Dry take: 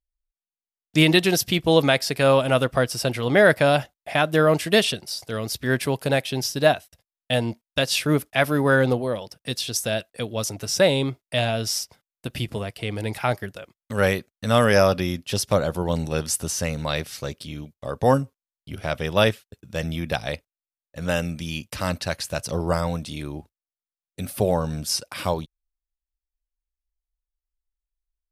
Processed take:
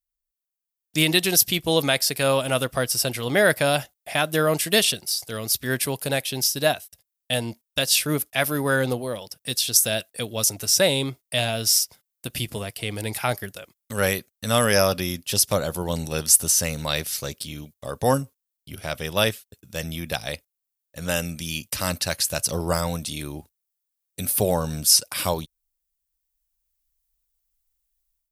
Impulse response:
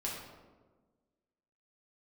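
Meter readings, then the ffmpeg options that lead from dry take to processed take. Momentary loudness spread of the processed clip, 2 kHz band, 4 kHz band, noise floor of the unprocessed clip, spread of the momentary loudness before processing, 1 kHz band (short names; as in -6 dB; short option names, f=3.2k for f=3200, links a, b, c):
14 LU, -1.5 dB, +3.0 dB, under -85 dBFS, 14 LU, -2.5 dB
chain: -af "dynaudnorm=f=670:g=3:m=11.5dB,aemphasis=mode=production:type=75kf,volume=-7.5dB"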